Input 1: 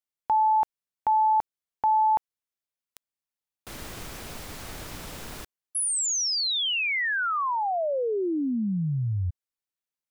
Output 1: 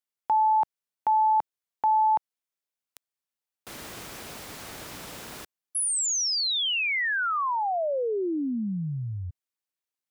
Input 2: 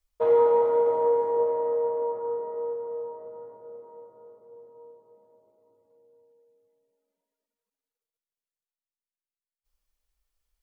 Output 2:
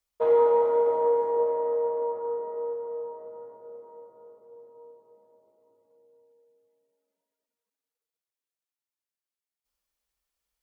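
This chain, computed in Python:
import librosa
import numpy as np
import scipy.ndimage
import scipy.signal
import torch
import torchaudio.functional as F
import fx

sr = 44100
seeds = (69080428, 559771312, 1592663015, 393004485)

y = fx.highpass(x, sr, hz=180.0, slope=6)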